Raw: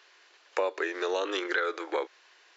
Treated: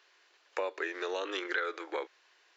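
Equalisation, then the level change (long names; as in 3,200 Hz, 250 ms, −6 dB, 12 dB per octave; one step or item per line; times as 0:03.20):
dynamic equaliser 2,200 Hz, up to +4 dB, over −41 dBFS, Q 0.9
low-shelf EQ 120 Hz +6 dB
−6.5 dB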